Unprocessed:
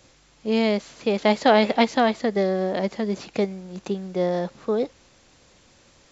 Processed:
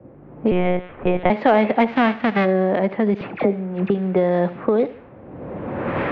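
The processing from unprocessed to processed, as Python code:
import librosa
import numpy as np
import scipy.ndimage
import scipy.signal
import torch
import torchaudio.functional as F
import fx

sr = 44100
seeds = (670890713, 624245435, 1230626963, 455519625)

p1 = fx.envelope_flatten(x, sr, power=0.3, at=(1.88, 2.44), fade=0.02)
p2 = fx.recorder_agc(p1, sr, target_db=-13.5, rise_db_per_s=25.0, max_gain_db=30)
p3 = scipy.signal.sosfilt(scipy.signal.butter(4, 2500.0, 'lowpass', fs=sr, output='sos'), p2)
p4 = fx.env_lowpass(p3, sr, base_hz=440.0, full_db=-17.5)
p5 = scipy.signal.sosfilt(scipy.signal.butter(2, 98.0, 'highpass', fs=sr, output='sos'), p4)
p6 = 10.0 ** (-13.5 / 20.0) * np.tanh(p5 / 10.0 ** (-13.5 / 20.0))
p7 = p5 + F.gain(torch.from_numpy(p6), -4.0).numpy()
p8 = fx.dispersion(p7, sr, late='lows', ms=67.0, hz=1200.0, at=(3.14, 3.9))
p9 = p8 + fx.echo_feedback(p8, sr, ms=74, feedback_pct=34, wet_db=-17.0, dry=0)
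p10 = fx.lpc_monotone(p9, sr, seeds[0], pitch_hz=180.0, order=10, at=(0.51, 1.3))
y = fx.band_squash(p10, sr, depth_pct=40)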